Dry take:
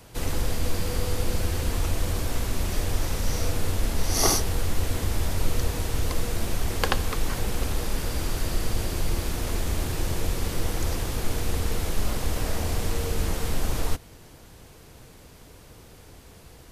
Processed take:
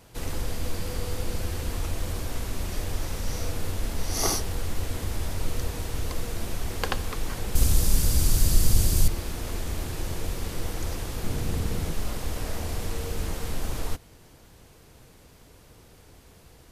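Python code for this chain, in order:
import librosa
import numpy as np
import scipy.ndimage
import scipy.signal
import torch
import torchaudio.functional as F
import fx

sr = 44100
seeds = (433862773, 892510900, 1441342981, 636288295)

y = fx.bass_treble(x, sr, bass_db=11, treble_db=14, at=(7.55, 9.08))
y = fx.vibrato(y, sr, rate_hz=3.6, depth_cents=22.0)
y = fx.peak_eq(y, sr, hz=150.0, db=8.5, octaves=1.7, at=(11.23, 11.93))
y = y * librosa.db_to_amplitude(-4.0)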